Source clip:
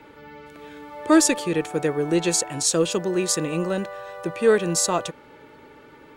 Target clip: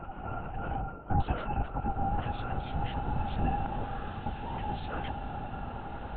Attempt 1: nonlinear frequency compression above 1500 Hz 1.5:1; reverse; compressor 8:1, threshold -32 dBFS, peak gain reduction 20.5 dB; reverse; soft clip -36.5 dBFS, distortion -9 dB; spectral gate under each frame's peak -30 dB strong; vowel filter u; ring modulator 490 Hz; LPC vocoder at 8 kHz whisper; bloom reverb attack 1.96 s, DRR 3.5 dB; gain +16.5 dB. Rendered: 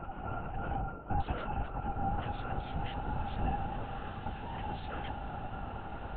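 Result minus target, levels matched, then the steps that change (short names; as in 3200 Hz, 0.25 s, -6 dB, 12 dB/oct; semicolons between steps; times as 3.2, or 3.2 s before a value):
soft clip: distortion +9 dB
change: soft clip -28.5 dBFS, distortion -18 dB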